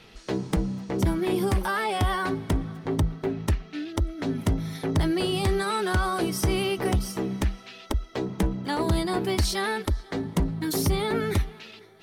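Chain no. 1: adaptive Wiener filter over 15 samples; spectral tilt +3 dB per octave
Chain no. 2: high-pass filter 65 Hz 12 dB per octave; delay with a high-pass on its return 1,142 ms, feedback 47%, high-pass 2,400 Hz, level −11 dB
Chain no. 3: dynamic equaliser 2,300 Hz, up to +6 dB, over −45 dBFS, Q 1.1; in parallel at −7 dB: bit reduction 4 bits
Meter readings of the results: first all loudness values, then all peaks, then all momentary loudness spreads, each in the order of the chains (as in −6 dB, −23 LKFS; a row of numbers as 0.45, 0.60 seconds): −30.0, −27.5, −23.0 LKFS; −8.0, −11.5, −8.5 dBFS; 11, 7, 7 LU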